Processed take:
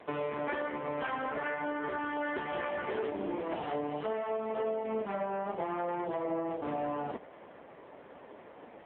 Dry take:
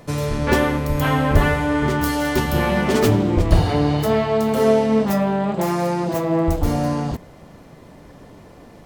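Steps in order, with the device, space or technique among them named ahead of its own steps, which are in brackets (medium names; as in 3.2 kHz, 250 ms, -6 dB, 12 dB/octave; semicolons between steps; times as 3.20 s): voicemail (band-pass 410–2900 Hz; compression 8:1, threshold -30 dBFS, peak gain reduction 16 dB; AMR-NB 5.9 kbps 8 kHz)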